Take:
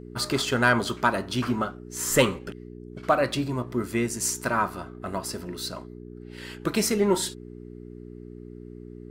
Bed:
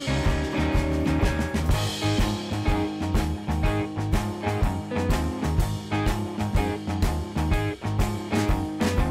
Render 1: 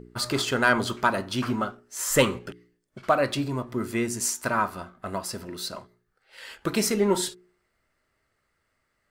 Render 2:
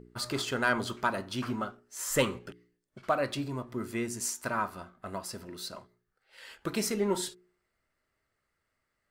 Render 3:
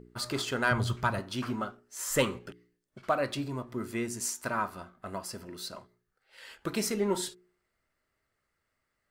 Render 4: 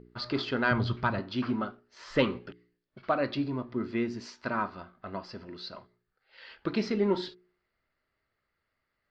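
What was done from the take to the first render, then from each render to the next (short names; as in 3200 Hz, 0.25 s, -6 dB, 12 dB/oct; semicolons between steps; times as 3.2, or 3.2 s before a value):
de-hum 60 Hz, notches 7
gain -6.5 dB
0.71–1.19 resonant low shelf 180 Hz +11 dB, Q 1.5; 5.12–5.6 notch 3800 Hz
elliptic low-pass 4700 Hz, stop band 70 dB; dynamic EQ 270 Hz, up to +6 dB, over -45 dBFS, Q 1.2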